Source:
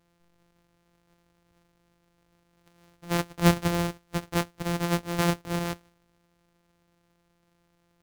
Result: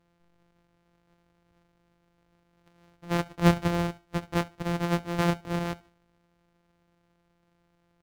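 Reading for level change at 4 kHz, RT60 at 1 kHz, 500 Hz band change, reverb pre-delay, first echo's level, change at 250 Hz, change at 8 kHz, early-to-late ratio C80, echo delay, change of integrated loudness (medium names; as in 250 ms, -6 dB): -3.5 dB, no reverb, 0.0 dB, no reverb, -23.0 dB, 0.0 dB, -7.5 dB, no reverb, 71 ms, -0.5 dB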